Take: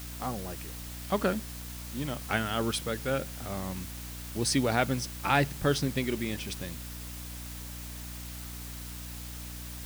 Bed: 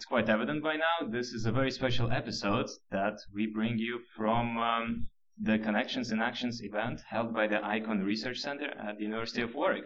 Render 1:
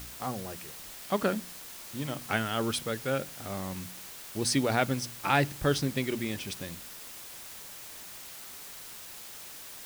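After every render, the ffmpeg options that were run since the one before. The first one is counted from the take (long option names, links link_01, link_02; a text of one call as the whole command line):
ffmpeg -i in.wav -af "bandreject=frequency=60:width_type=h:width=4,bandreject=frequency=120:width_type=h:width=4,bandreject=frequency=180:width_type=h:width=4,bandreject=frequency=240:width_type=h:width=4,bandreject=frequency=300:width_type=h:width=4" out.wav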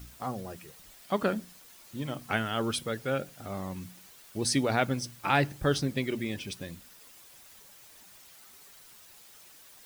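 ffmpeg -i in.wav -af "afftdn=noise_reduction=10:noise_floor=-45" out.wav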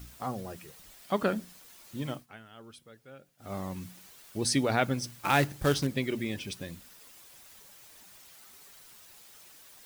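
ffmpeg -i in.wav -filter_complex "[0:a]asettb=1/sr,asplit=3[link_01][link_02][link_03];[link_01]atrim=end=5.034[link_04];[link_02]atrim=start=5.03:end=5.87,asetpts=PTS-STARTPTS,afade=type=in:duration=0.004:curve=qsin,afade=type=out:start_time=0.836:duration=0.004:curve=qsin,acrusher=bits=3:mode=log:mix=0:aa=0.000001[link_05];[link_03]atrim=start=5.866[link_06];[link_04][link_05]acrossfade=duration=0.004:curve1=hsin:curve2=qsin[link_07];[link_07][link_06]acrossfade=duration=0.004:curve1=qsin:curve2=hsin,asplit=3[link_08][link_09][link_10];[link_08]atrim=end=2.26,asetpts=PTS-STARTPTS,afade=type=out:start_time=2.11:duration=0.15:silence=0.1[link_11];[link_09]atrim=start=2.26:end=3.38,asetpts=PTS-STARTPTS,volume=-20dB[link_12];[link_10]atrim=start=3.38,asetpts=PTS-STARTPTS,afade=type=in:duration=0.15:silence=0.1[link_13];[link_11][link_12][link_13]concat=n=3:v=0:a=1" out.wav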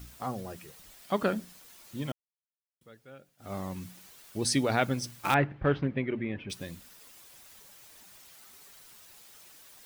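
ffmpeg -i in.wav -filter_complex "[0:a]asettb=1/sr,asplit=3[link_01][link_02][link_03];[link_01]atrim=end=5.344[link_04];[link_02]atrim=start=5.34:end=6.5,asetpts=PTS-STARTPTS,afade=type=in:duration=0.004:curve=qsin,afade=type=out:start_time=1.156:duration=0.004:curve=qsin,lowpass=frequency=2400:width=0.5412,lowpass=frequency=2400:width=1.3066[link_05];[link_03]atrim=start=6.496[link_06];[link_04][link_05]acrossfade=duration=0.004:curve1=hsin:curve2=qsin[link_07];[link_07][link_06]acrossfade=duration=0.004:curve1=qsin:curve2=hsin,asplit=3[link_08][link_09][link_10];[link_08]atrim=end=2.12,asetpts=PTS-STARTPTS,afade=type=out:start_time=2.116:duration=0.004:curve=hsin[link_11];[link_09]atrim=start=2.12:end=2.81,asetpts=PTS-STARTPTS,volume=0[link_12];[link_10]atrim=start=2.81,asetpts=PTS-STARTPTS,afade=type=in:duration=0.004:curve=hsin[link_13];[link_11][link_12][link_13]concat=n=3:v=0:a=1" out.wav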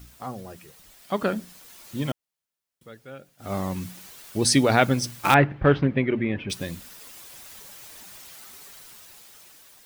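ffmpeg -i in.wav -af "dynaudnorm=framelen=490:gausssize=7:maxgain=9.5dB" out.wav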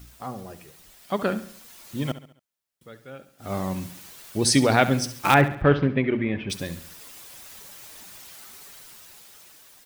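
ffmpeg -i in.wav -af "aecho=1:1:69|138|207|276:0.2|0.0918|0.0422|0.0194" out.wav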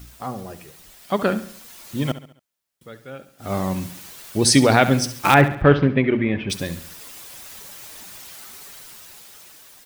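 ffmpeg -i in.wav -af "volume=4.5dB,alimiter=limit=-1dB:level=0:latency=1" out.wav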